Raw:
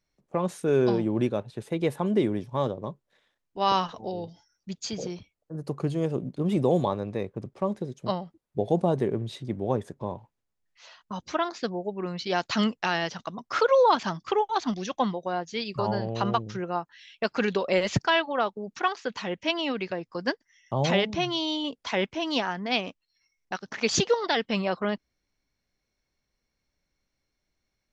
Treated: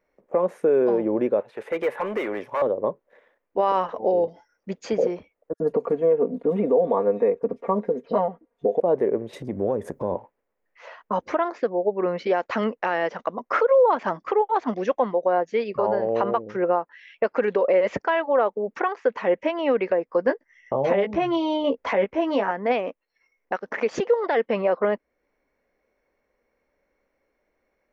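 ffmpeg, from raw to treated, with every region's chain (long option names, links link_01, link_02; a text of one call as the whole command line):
ffmpeg -i in.wav -filter_complex "[0:a]asettb=1/sr,asplit=3[link_01][link_02][link_03];[link_01]atrim=end=1.404[link_04];[link_02]atrim=start=1.4:end=2.62,asetpts=PTS-STARTPTS,afade=type=in:duration=0.004:curve=qsin,afade=type=out:start_time=1.216:duration=0.004:curve=qsin,tiltshelf=frequency=700:gain=-9,acrossover=split=910|3900[link_05][link_06][link_07];[link_05]acompressor=threshold=-35dB:ratio=4[link_08];[link_06]acompressor=threshold=-33dB:ratio=4[link_09];[link_07]acompressor=threshold=-55dB:ratio=4[link_10];[link_08][link_09][link_10]amix=inputs=3:normalize=0,volume=34dB,asoftclip=hard,volume=-34dB[link_11];[link_03]atrim=start=2.616[link_12];[link_04][link_11]acrossfade=duration=0.004:curve1=hsin:curve2=qsin[link_13];[link_13][link_12]acrossfade=duration=0.004:curve1=qsin:curve2=hsin,asettb=1/sr,asplit=3[link_14][link_15][link_16];[link_14]atrim=end=5.534[link_17];[link_15]atrim=start=5.53:end=8.8,asetpts=PTS-STARTPTS,afade=type=in:duration=0.004:curve=qsin,afade=type=out:start_time=3.266:duration=0.004:curve=qsin,aemphasis=mode=reproduction:type=cd,aecho=1:1:4.3:0.87,atrim=end_sample=144207,acrossover=split=4000[link_18][link_19];[link_18]adelay=70[link_20];[link_20][link_19]amix=inputs=2:normalize=0,atrim=end_sample=144207[link_21];[link_16]atrim=start=8.796[link_22];[link_17][link_21]acrossfade=duration=0.004:curve1=hsin:curve2=qsin[link_23];[link_23][link_22]acrossfade=duration=0.004:curve1=qsin:curve2=hsin,asettb=1/sr,asplit=3[link_24][link_25][link_26];[link_24]atrim=end=9.334[link_27];[link_25]atrim=start=9.33:end=10.15,asetpts=PTS-STARTPTS,afade=type=in:duration=0.004:curve=qsin,afade=type=out:start_time=0.816:duration=0.004:curve=qsin,bass=frequency=250:gain=12,treble=frequency=4000:gain=14,acompressor=threshold=-29dB:ratio=6:attack=3.2:release=140:knee=1:detection=peak[link_28];[link_26]atrim=start=10.146[link_29];[link_27][link_28]acrossfade=duration=0.004:curve1=hsin:curve2=qsin[link_30];[link_30][link_29]acrossfade=duration=0.004:curve1=qsin:curve2=hsin,asettb=1/sr,asplit=3[link_31][link_32][link_33];[link_31]atrim=end=20.264[link_34];[link_32]atrim=start=20.26:end=22.51,asetpts=PTS-STARTPTS,afade=type=in:duration=0.004:curve=qsin,afade=type=out:start_time=2.246:duration=0.004:curve=qsin,lowshelf=frequency=160:gain=9,asplit=2[link_35][link_36];[link_36]adelay=15,volume=-5dB[link_37];[link_35][link_37]amix=inputs=2:normalize=0,atrim=end_sample=99225[link_38];[link_33]atrim=start=22.506[link_39];[link_34][link_38]acrossfade=duration=0.004:curve1=hsin:curve2=qsin[link_40];[link_40][link_39]acrossfade=duration=0.004:curve1=qsin:curve2=hsin,equalizer=frequency=510:width=1.5:gain=10.5,alimiter=limit=-19.5dB:level=0:latency=1:release=450,equalizer=frequency=125:width_type=o:width=1:gain=-7,equalizer=frequency=250:width_type=o:width=1:gain=6,equalizer=frequency=500:width_type=o:width=1:gain=6,equalizer=frequency=1000:width_type=o:width=1:gain=7,equalizer=frequency=2000:width_type=o:width=1:gain=10,equalizer=frequency=4000:width_type=o:width=1:gain=-9,equalizer=frequency=8000:width_type=o:width=1:gain=-8" out.wav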